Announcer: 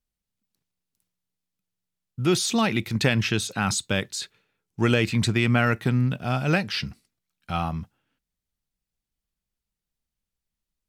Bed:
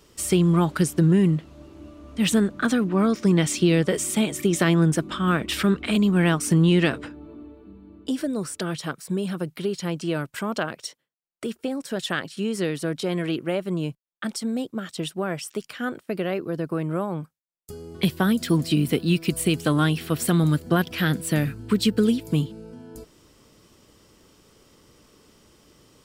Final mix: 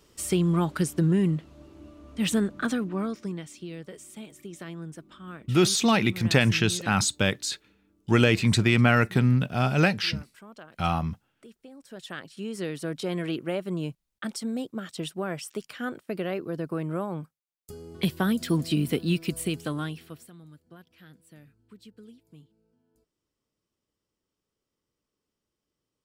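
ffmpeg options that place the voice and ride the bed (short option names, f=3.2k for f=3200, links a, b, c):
-filter_complex "[0:a]adelay=3300,volume=1dB[a];[1:a]volume=11.5dB,afade=t=out:st=2.59:d=0.86:silence=0.16788,afade=t=in:st=11.71:d=1.37:silence=0.158489,afade=t=out:st=19.09:d=1.21:silence=0.0530884[b];[a][b]amix=inputs=2:normalize=0"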